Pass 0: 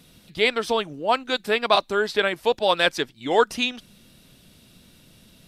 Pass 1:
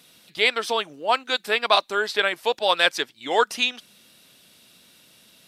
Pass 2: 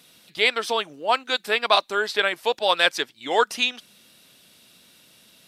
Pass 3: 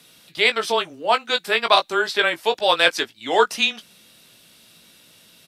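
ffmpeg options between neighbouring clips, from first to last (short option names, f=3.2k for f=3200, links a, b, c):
-af "highpass=f=760:p=1,volume=2.5dB"
-af anull
-filter_complex "[0:a]afreqshift=-13,asplit=2[a][b];[b]adelay=18,volume=-8dB[c];[a][c]amix=inputs=2:normalize=0,volume=2dB"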